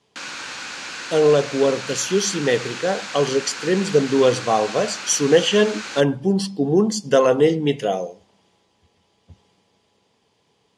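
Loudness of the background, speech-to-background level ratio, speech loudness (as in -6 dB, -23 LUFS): -30.5 LUFS, 11.0 dB, -19.5 LUFS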